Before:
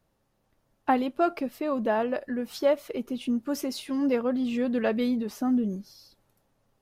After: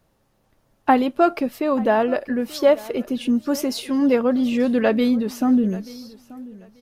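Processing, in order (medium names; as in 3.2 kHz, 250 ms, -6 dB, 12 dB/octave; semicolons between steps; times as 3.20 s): feedback delay 884 ms, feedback 21%, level -20 dB; trim +7.5 dB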